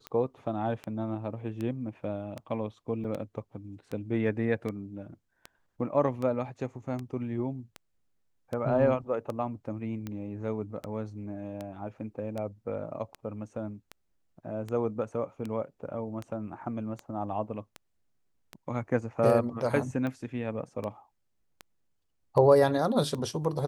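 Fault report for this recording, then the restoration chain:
tick 78 rpm -23 dBFS
3.04–3.05 s: dropout 6.3 ms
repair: de-click; interpolate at 3.04 s, 6.3 ms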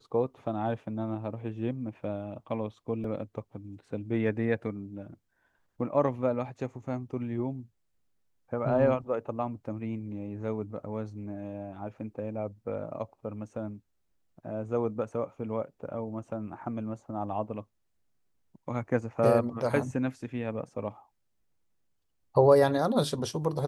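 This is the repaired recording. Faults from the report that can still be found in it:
nothing left

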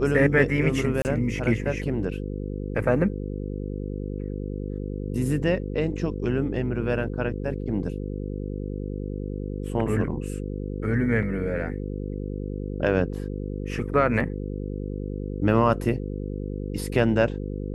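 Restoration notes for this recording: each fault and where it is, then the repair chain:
buzz 50 Hz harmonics 10 -31 dBFS
1.02–1.05 s: dropout 29 ms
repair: de-hum 50 Hz, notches 10; interpolate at 1.02 s, 29 ms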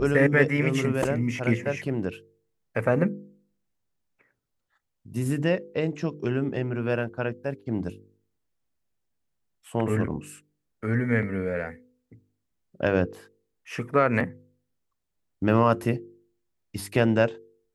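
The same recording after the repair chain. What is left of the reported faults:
nothing left

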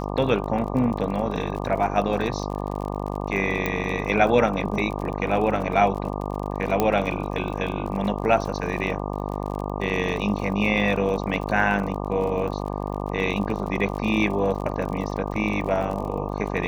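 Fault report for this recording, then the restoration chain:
buzz 50 Hz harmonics 24 -29 dBFS
crackle 43 per s -31 dBFS
3.66 s: pop -10 dBFS
6.80 s: pop -7 dBFS
15.34 s: dropout 2.4 ms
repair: de-click; de-hum 50 Hz, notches 24; interpolate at 15.34 s, 2.4 ms

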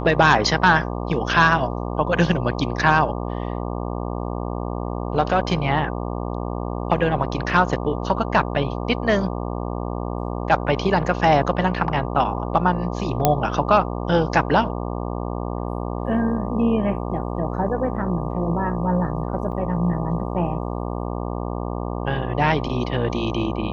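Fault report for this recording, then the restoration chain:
buzz 60 Hz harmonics 20 -27 dBFS
13.25 s: pop -1 dBFS
19.52 s: dropout 4.8 ms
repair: de-click; de-hum 60 Hz, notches 20; interpolate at 19.52 s, 4.8 ms

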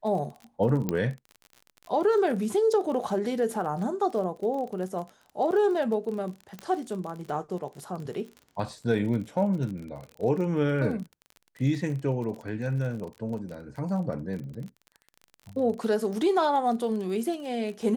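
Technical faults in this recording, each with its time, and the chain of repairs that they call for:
crackle 31 per s -35 dBFS
0.89 s: pop -14 dBFS
6.59 s: pop -22 dBFS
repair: de-click

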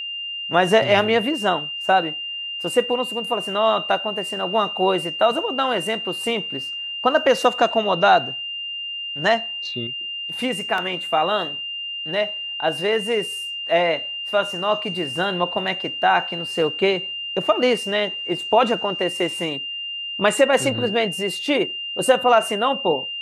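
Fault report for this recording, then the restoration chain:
whine 2.8 kHz -27 dBFS
10.78 s: dropout 2 ms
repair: band-stop 2.8 kHz, Q 30; interpolate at 10.78 s, 2 ms

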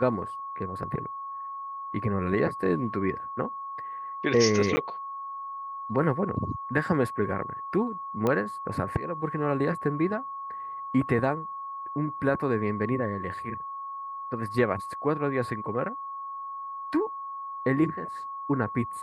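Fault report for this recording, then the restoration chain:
whine 1.1 kHz -34 dBFS
4.76–4.77 s: dropout 10 ms
8.27 s: pop -14 dBFS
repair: de-click; band-stop 1.1 kHz, Q 30; interpolate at 4.76 s, 10 ms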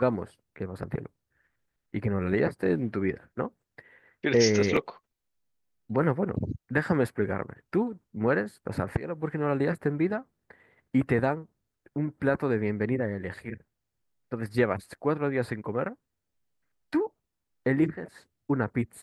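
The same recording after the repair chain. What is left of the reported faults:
nothing left

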